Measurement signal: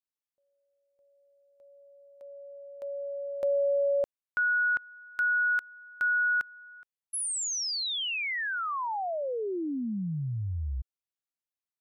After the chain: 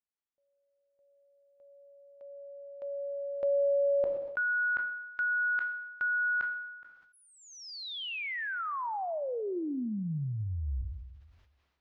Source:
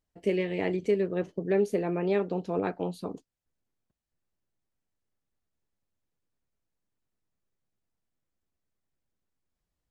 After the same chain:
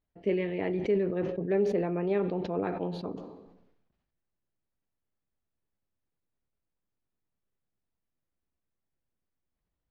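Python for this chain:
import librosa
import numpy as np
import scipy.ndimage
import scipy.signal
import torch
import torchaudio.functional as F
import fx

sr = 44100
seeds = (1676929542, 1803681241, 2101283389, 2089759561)

y = fx.air_absorb(x, sr, metres=260.0)
y = fx.rev_plate(y, sr, seeds[0], rt60_s=0.93, hf_ratio=1.0, predelay_ms=0, drr_db=17.0)
y = fx.sustainer(y, sr, db_per_s=50.0)
y = y * 10.0 ** (-1.5 / 20.0)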